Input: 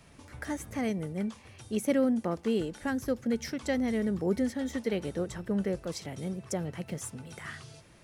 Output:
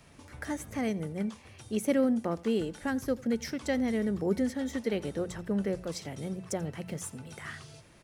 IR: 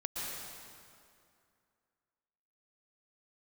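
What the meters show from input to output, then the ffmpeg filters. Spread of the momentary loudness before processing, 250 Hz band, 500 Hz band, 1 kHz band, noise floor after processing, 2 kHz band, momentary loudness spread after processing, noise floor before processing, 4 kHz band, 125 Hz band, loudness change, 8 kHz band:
13 LU, 0.0 dB, 0.0 dB, 0.0 dB, -56 dBFS, 0.0 dB, 13 LU, -56 dBFS, 0.0 dB, -0.5 dB, 0.0 dB, 0.0 dB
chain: -filter_complex "[0:a]bandreject=f=60:t=h:w=6,bandreject=f=120:t=h:w=6,bandreject=f=180:t=h:w=6,acrossover=split=3300[a][b];[b]acrusher=bits=6:mode=log:mix=0:aa=0.000001[c];[a][c]amix=inputs=2:normalize=0,aecho=1:1:87:0.075"

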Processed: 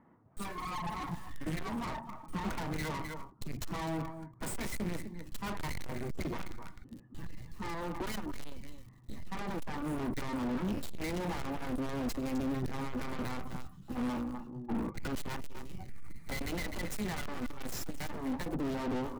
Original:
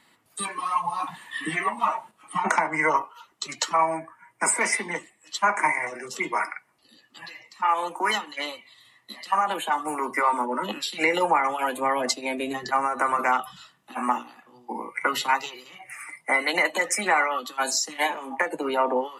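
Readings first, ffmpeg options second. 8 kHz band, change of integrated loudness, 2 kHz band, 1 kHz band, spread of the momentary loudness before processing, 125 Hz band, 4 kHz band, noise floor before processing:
-17.0 dB, -13.0 dB, -18.0 dB, -18.0 dB, 14 LU, +7.5 dB, -14.5 dB, -63 dBFS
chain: -filter_complex "[0:a]acrossover=split=1400[a][b];[b]acrusher=bits=5:dc=4:mix=0:aa=0.000001[c];[a][c]amix=inputs=2:normalize=0,asubboost=boost=6:cutoff=230,aecho=1:1:255:0.119,aeval=exprs='(tanh(70.8*val(0)+0.45)-tanh(0.45))/70.8':c=same,lowshelf=f=410:g=10,volume=-1dB"

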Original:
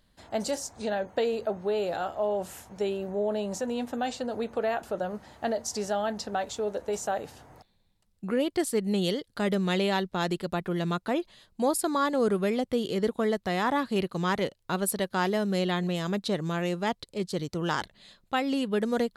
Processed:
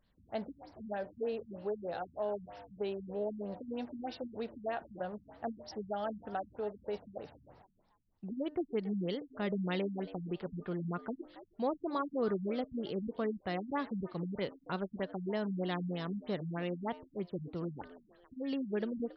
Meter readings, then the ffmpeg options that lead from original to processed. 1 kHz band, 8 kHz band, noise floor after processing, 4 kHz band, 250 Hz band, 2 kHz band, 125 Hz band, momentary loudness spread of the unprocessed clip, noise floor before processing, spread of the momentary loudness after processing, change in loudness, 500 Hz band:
-10.5 dB, under -30 dB, -71 dBFS, -14.0 dB, -8.0 dB, -12.5 dB, -7.5 dB, 6 LU, -69 dBFS, 7 LU, -9.0 dB, -9.0 dB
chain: -filter_complex "[0:a]bandreject=f=302.4:t=h:w=4,bandreject=f=604.8:t=h:w=4,bandreject=f=907.2:t=h:w=4,bandreject=f=1.2096k:t=h:w=4,bandreject=f=1.512k:t=h:w=4,bandreject=f=1.8144k:t=h:w=4,asplit=4[a][b][c][d];[b]adelay=276,afreqshift=88,volume=-17dB[e];[c]adelay=552,afreqshift=176,volume=-27.5dB[f];[d]adelay=828,afreqshift=264,volume=-37.9dB[g];[a][e][f][g]amix=inputs=4:normalize=0,afftfilt=real='re*lt(b*sr/1024,230*pow(5900/230,0.5+0.5*sin(2*PI*3.2*pts/sr)))':imag='im*lt(b*sr/1024,230*pow(5900/230,0.5+0.5*sin(2*PI*3.2*pts/sr)))':win_size=1024:overlap=0.75,volume=-7.5dB"

